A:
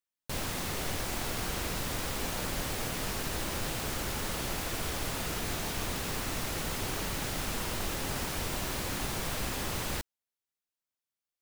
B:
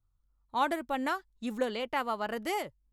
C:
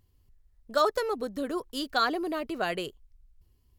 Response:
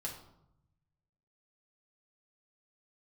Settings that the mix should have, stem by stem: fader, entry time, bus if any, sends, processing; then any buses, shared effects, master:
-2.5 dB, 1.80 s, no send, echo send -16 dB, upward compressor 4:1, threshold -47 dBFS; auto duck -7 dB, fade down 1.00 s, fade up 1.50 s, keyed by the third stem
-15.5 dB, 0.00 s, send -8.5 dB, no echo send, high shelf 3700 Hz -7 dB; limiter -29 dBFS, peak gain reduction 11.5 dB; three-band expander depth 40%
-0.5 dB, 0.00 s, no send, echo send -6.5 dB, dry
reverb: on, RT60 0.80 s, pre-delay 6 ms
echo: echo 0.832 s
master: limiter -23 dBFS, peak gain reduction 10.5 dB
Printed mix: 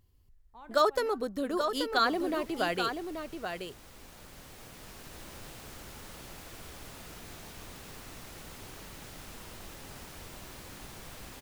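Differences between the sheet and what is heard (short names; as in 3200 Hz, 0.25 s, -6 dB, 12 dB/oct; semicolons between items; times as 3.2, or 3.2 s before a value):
stem A -2.5 dB -> -12.5 dB; master: missing limiter -23 dBFS, peak gain reduction 10.5 dB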